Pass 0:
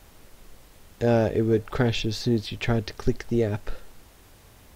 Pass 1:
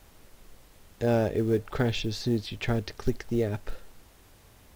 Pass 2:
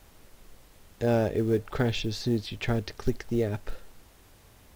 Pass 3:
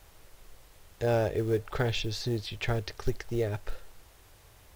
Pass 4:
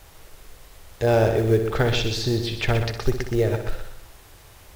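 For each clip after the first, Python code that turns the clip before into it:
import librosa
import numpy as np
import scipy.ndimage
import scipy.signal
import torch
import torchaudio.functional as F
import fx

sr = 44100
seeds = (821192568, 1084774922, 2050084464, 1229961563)

y1 = fx.quant_float(x, sr, bits=4)
y1 = y1 * librosa.db_to_amplitude(-3.5)
y2 = y1
y3 = fx.peak_eq(y2, sr, hz=230.0, db=-10.0, octaves=0.83)
y4 = fx.echo_heads(y3, sr, ms=62, heads='first and second', feedback_pct=40, wet_db=-10)
y4 = y4 * librosa.db_to_amplitude(7.5)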